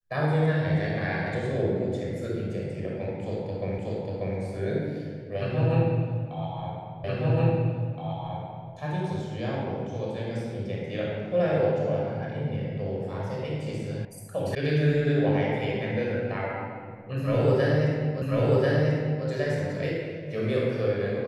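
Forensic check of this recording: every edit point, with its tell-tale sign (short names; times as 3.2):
3.78 repeat of the last 0.59 s
7.04 repeat of the last 1.67 s
14.05 sound cut off
14.55 sound cut off
18.22 repeat of the last 1.04 s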